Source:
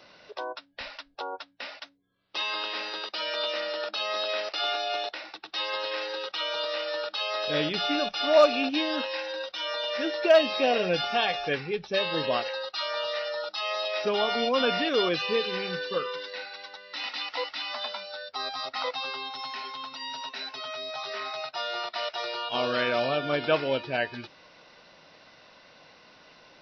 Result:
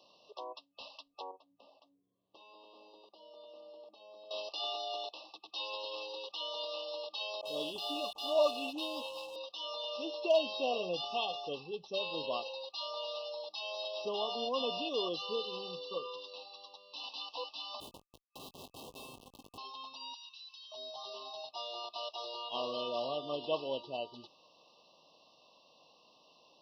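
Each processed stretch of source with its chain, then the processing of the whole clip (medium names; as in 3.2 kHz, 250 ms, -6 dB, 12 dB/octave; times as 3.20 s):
1.31–4.31 s: compression 2:1, threshold -56 dBFS + tilt shelf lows +9.5 dB, about 1.1 kHz
7.41–9.36 s: resonant low shelf 110 Hz +10.5 dB, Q 3 + phase dispersion highs, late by 45 ms, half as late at 930 Hz + hysteresis with a dead band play -36 dBFS
17.80–19.58 s: high-order bell 690 Hz -15.5 dB 2.3 oct + Schmitt trigger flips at -32 dBFS + doubling 20 ms -11 dB
20.14–20.72 s: high-pass 1.5 kHz 24 dB/octave + compression 3:1, threshold -40 dBFS
whole clip: FFT band-reject 1.2–2.6 kHz; high-pass 330 Hz 6 dB/octave; trim -8 dB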